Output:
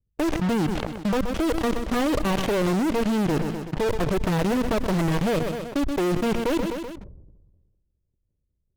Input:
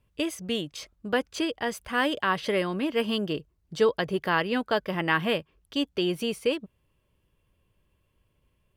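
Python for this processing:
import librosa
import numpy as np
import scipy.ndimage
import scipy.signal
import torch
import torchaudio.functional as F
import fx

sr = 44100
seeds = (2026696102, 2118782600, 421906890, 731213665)

p1 = fx.lower_of_two(x, sr, delay_ms=0.33)
p2 = scipy.signal.sosfilt(scipy.signal.butter(2, 1400.0, 'lowpass', fs=sr, output='sos'), p1)
p3 = fx.env_lowpass(p2, sr, base_hz=440.0, full_db=-28.0)
p4 = fx.low_shelf(p3, sr, hz=64.0, db=10.5)
p5 = fx.fuzz(p4, sr, gain_db=49.0, gate_db=-43.0)
p6 = p4 + (p5 * librosa.db_to_amplitude(-3.0))
p7 = fx.level_steps(p6, sr, step_db=18)
p8 = p7 + fx.echo_feedback(p7, sr, ms=127, feedback_pct=44, wet_db=-21.0, dry=0)
p9 = fx.sustainer(p8, sr, db_per_s=39.0)
y = p9 * librosa.db_to_amplitude(-4.0)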